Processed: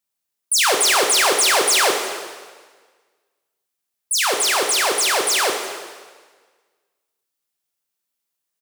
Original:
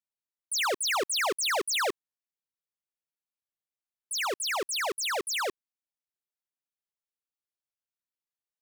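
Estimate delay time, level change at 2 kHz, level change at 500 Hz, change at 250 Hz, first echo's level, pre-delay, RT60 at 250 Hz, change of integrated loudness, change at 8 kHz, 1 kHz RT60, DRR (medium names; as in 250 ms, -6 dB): 363 ms, +11.0 dB, +11.0 dB, +11.0 dB, -20.5 dB, 7 ms, 1.5 s, +12.0 dB, +14.5 dB, 1.5 s, 2.5 dB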